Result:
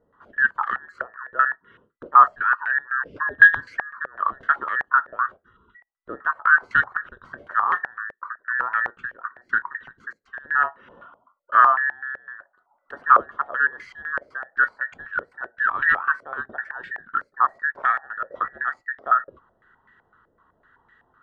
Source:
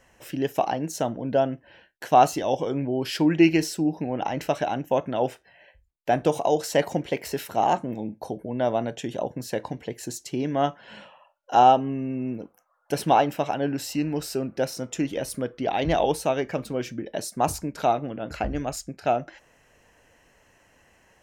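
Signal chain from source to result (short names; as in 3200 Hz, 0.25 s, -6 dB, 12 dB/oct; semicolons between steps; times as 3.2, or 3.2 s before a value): band inversion scrambler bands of 2000 Hz; stepped low-pass 7.9 Hz 550–1900 Hz; gain -4.5 dB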